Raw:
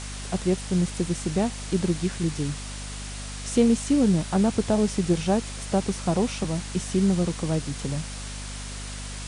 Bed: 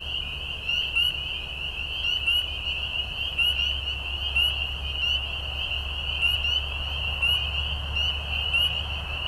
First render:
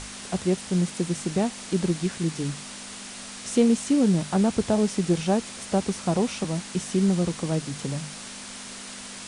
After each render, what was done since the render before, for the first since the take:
mains-hum notches 50/100/150 Hz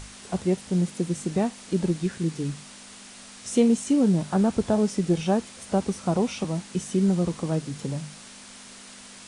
noise reduction from a noise print 6 dB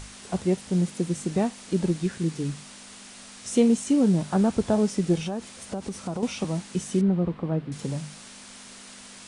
0:05.18–0:06.23: downward compressor, threshold −27 dBFS
0:07.01–0:07.72: high-frequency loss of the air 450 metres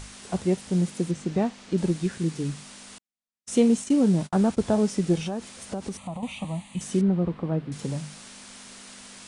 0:01.11–0:01.78: high-frequency loss of the air 87 metres
0:02.98–0:04.63: noise gate −36 dBFS, range −55 dB
0:05.97–0:06.81: phaser with its sweep stopped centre 1,500 Hz, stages 6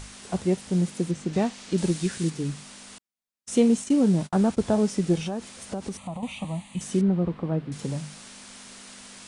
0:01.33–0:02.30: high-shelf EQ 2,600 Hz +8 dB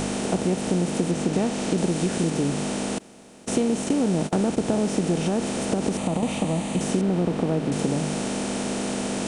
compressor on every frequency bin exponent 0.4
downward compressor 3 to 1, threshold −20 dBFS, peak gain reduction 6.5 dB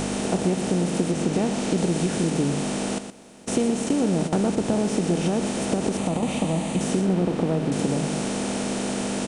single-tap delay 119 ms −9.5 dB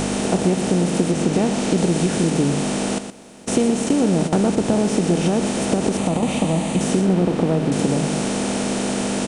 level +4.5 dB

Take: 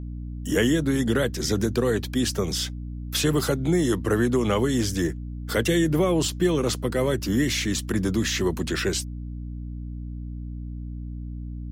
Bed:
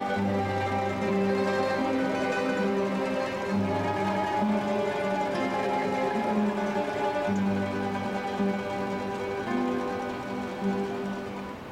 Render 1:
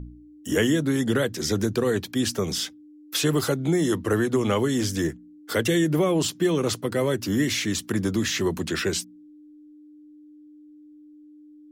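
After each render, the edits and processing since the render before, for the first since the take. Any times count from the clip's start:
hum removal 60 Hz, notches 4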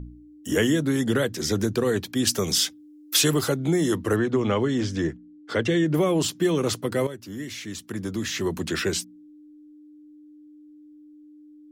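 0:02.27–0:03.34: high-shelf EQ 2,700 Hz +8 dB
0:04.16–0:05.94: high-frequency loss of the air 120 metres
0:07.07–0:08.69: fade in quadratic, from −12.5 dB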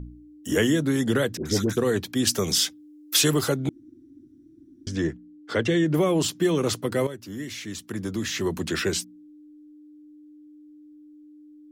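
0:01.37–0:01.77: all-pass dispersion highs, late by 84 ms, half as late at 900 Hz
0:03.69–0:04.87: fill with room tone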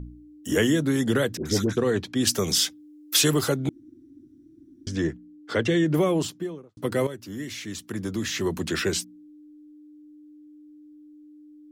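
0:01.67–0:02.21: high-frequency loss of the air 62 metres
0:05.98–0:06.77: fade out and dull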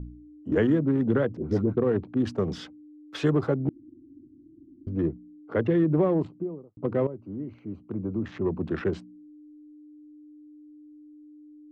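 adaptive Wiener filter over 25 samples
low-pass filter 1,400 Hz 12 dB per octave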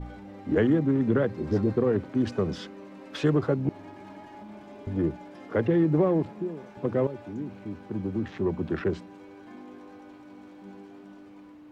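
mix in bed −19 dB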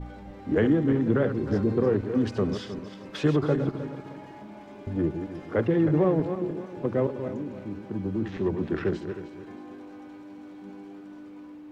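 feedback delay that plays each chunk backwards 155 ms, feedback 55%, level −8 dB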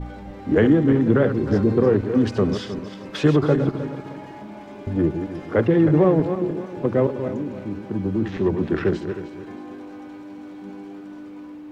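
level +6 dB

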